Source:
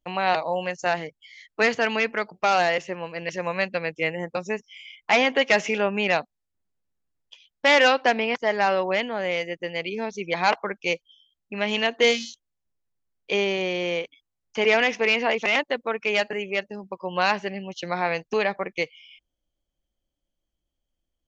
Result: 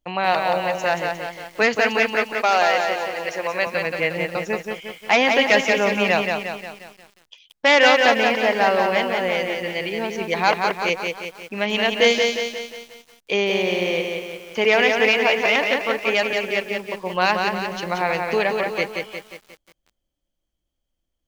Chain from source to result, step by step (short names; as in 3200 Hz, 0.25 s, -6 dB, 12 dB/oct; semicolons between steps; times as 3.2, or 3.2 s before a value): 2.16–3.67 HPF 330 Hz 12 dB/oct; lo-fi delay 0.178 s, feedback 55%, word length 8-bit, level -4 dB; gain +2.5 dB